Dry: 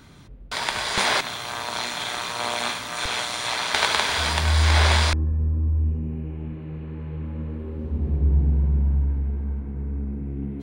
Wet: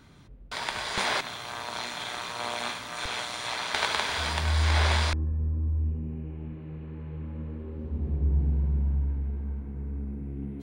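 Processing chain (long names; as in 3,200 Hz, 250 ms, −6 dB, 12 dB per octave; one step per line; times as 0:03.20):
high-shelf EQ 5,400 Hz −4 dB, from 0:08.40 +5.5 dB
level −5.5 dB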